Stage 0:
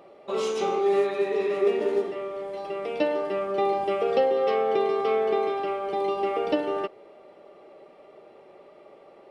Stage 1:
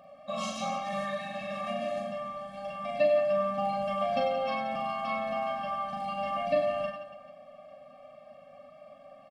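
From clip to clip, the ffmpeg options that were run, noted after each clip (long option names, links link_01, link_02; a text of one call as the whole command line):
ffmpeg -i in.wav -filter_complex "[0:a]asplit=2[link_01][link_02];[link_02]aecho=0:1:40|96|174.4|284.2|437.8:0.631|0.398|0.251|0.158|0.1[link_03];[link_01][link_03]amix=inputs=2:normalize=0,afftfilt=real='re*eq(mod(floor(b*sr/1024/260),2),0)':imag='im*eq(mod(floor(b*sr/1024/260),2),0)':win_size=1024:overlap=0.75" out.wav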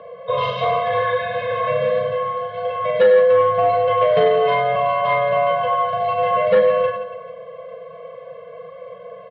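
ffmpeg -i in.wav -af "aeval=exprs='0.188*sin(PI/2*1.78*val(0)/0.188)':channel_layout=same,highpass=frequency=270:width_type=q:width=0.5412,highpass=frequency=270:width_type=q:width=1.307,lowpass=frequency=3500:width_type=q:width=0.5176,lowpass=frequency=3500:width_type=q:width=0.7071,lowpass=frequency=3500:width_type=q:width=1.932,afreqshift=-89,bandreject=frequency=2600:width=6.9,volume=6dB" out.wav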